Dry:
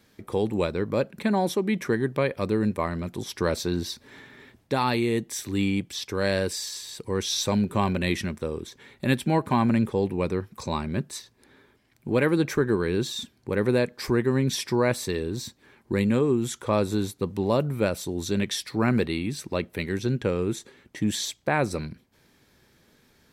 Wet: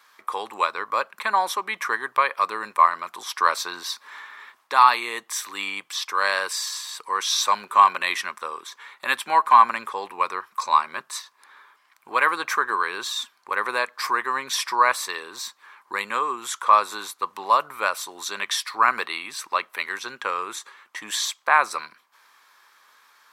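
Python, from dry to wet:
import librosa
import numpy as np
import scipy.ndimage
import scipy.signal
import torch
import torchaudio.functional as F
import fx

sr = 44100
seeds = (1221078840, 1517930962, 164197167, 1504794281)

y = fx.highpass_res(x, sr, hz=1100.0, q=4.9)
y = y * 10.0 ** (4.0 / 20.0)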